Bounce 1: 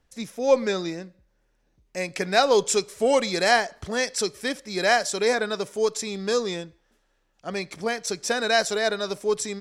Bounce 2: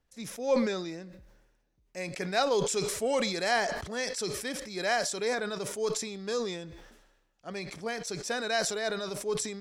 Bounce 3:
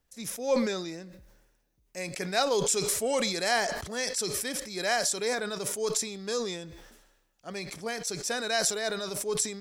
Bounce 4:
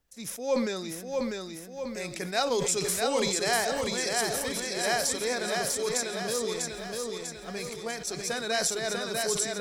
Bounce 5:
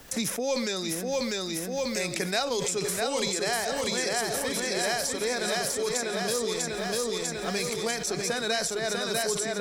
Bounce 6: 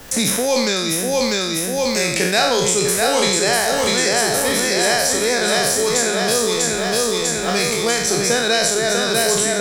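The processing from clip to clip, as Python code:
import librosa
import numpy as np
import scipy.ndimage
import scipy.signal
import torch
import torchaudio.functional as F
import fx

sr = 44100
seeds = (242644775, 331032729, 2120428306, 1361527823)

y1 = fx.sustainer(x, sr, db_per_s=50.0)
y1 = y1 * 10.0 ** (-8.5 / 20.0)
y2 = fx.high_shelf(y1, sr, hz=7000.0, db=11.5)
y3 = fx.echo_feedback(y2, sr, ms=646, feedback_pct=53, wet_db=-3.5)
y3 = y3 * 10.0 ** (-1.0 / 20.0)
y4 = fx.band_squash(y3, sr, depth_pct=100)
y5 = fx.spec_trails(y4, sr, decay_s=0.8)
y5 = y5 * 10.0 ** (8.5 / 20.0)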